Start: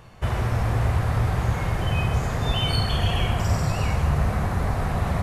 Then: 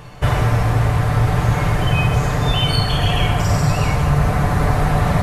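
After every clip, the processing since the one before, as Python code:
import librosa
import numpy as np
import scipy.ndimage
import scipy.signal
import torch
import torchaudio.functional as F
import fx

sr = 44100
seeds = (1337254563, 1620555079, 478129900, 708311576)

y = x + 0.47 * np.pad(x, (int(6.8 * sr / 1000.0), 0))[:len(x)]
y = fx.rider(y, sr, range_db=3, speed_s=0.5)
y = y * 10.0 ** (6.5 / 20.0)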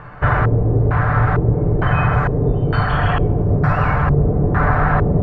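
y = fx.filter_lfo_lowpass(x, sr, shape='square', hz=1.1, low_hz=400.0, high_hz=1500.0, q=2.9)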